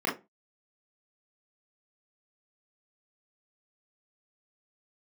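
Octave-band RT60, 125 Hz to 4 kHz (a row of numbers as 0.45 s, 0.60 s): 0.35 s, 0.30 s, 0.25 s, 0.25 s, 0.20 s, 0.15 s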